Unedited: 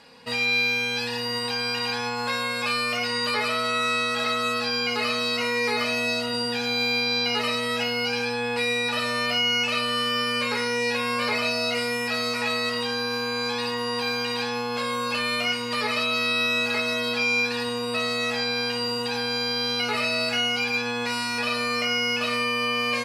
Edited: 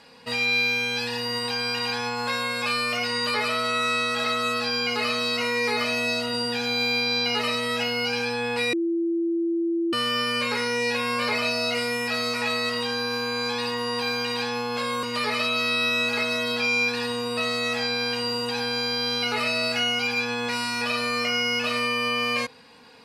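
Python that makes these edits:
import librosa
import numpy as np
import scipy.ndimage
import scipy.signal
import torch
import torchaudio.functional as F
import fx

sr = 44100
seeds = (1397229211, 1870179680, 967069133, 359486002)

y = fx.edit(x, sr, fx.bleep(start_s=8.73, length_s=1.2, hz=336.0, db=-21.5),
    fx.cut(start_s=15.03, length_s=0.57), tone=tone)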